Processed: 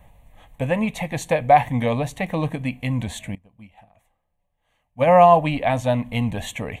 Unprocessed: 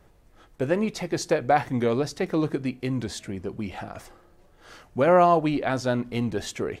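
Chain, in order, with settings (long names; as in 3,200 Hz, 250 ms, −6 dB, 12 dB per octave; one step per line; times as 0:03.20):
phaser with its sweep stopped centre 1,400 Hz, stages 6
0:03.35–0:05.09: expander for the loud parts 2.5 to 1, over −39 dBFS
level +8 dB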